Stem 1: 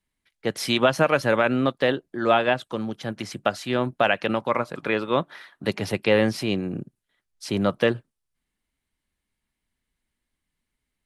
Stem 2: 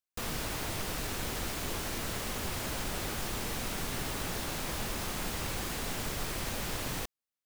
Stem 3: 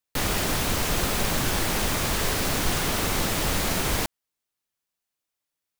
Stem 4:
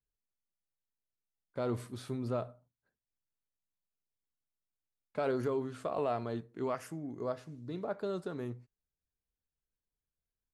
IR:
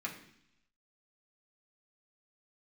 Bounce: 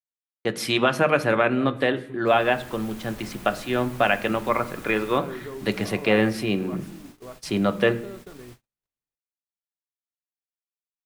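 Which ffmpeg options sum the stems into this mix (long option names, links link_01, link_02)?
-filter_complex "[0:a]volume=-1.5dB,asplit=2[link_01][link_02];[link_02]volume=-6dB[link_03];[1:a]adelay=2100,volume=-14.5dB,asplit=2[link_04][link_05];[link_05]volume=-16dB[link_06];[2:a]asoftclip=type=tanh:threshold=-19dB,adelay=2250,volume=-16dB[link_07];[3:a]volume=-5dB,asplit=3[link_08][link_09][link_10];[link_09]volume=-9dB[link_11];[link_10]apad=whole_len=354978[link_12];[link_07][link_12]sidechaincompress=threshold=-44dB:ratio=8:attack=16:release=432[link_13];[4:a]atrim=start_sample=2205[link_14];[link_03][link_06][link_11]amix=inputs=3:normalize=0[link_15];[link_15][link_14]afir=irnorm=-1:irlink=0[link_16];[link_01][link_04][link_13][link_08][link_16]amix=inputs=5:normalize=0,agate=range=-49dB:threshold=-42dB:ratio=16:detection=peak,adynamicequalizer=threshold=0.00398:dfrequency=5200:dqfactor=0.82:tfrequency=5200:tqfactor=0.82:attack=5:release=100:ratio=0.375:range=2.5:mode=cutabove:tftype=bell"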